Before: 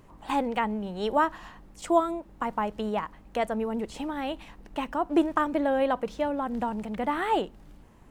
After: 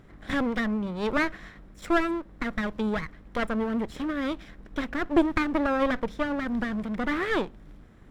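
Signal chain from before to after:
lower of the sound and its delayed copy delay 0.54 ms
high-shelf EQ 5,000 Hz −10.5 dB
level +3 dB

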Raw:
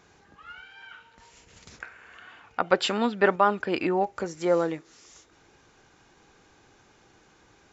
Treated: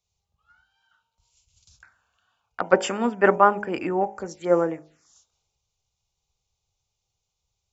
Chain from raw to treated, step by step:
phaser swept by the level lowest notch 260 Hz, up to 4,000 Hz, full sweep at −26 dBFS
hum removal 51.46 Hz, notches 19
multiband upward and downward expander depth 70%

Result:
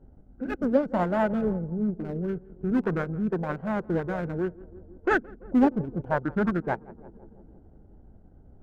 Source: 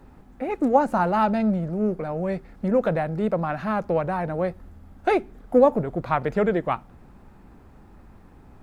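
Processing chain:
adaptive Wiener filter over 25 samples
on a send: tape delay 168 ms, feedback 75%, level −16 dB, low-pass 1,200 Hz
on the sum: formants moved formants −6 semitones
in parallel at −10 dB: soft clipping −22 dBFS, distortion −8 dB
on the sum: parametric band 1,500 Hz +13.5 dB 0.35 octaves
transient designer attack 0 dB, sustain −6 dB
level −4.5 dB

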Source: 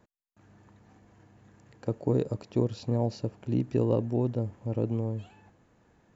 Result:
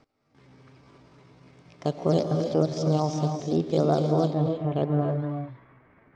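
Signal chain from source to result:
in parallel at −8 dB: sample-and-hold swept by an LFO 9×, swing 160% 3.8 Hz
on the sum: reverb whose tail is shaped and stops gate 340 ms rising, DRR 3.5 dB
pitch shifter +4.5 semitones
low-pass filter sweep 5,200 Hz → 1,800 Hz, 0:04.21–0:05.01

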